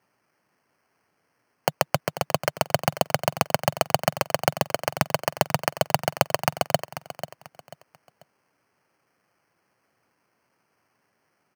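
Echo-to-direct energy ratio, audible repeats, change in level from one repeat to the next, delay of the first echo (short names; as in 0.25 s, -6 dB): -12.0 dB, 3, -10.0 dB, 0.49 s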